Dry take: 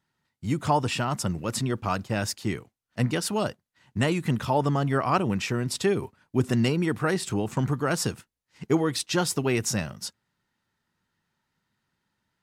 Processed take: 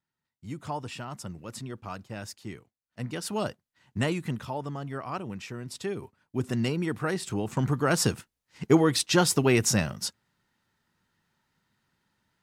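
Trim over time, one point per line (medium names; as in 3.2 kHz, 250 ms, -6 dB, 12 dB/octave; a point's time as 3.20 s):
2.99 s -11 dB
3.39 s -3 dB
4.08 s -3 dB
4.61 s -11 dB
5.55 s -11 dB
6.71 s -4 dB
7.27 s -4 dB
8.08 s +3 dB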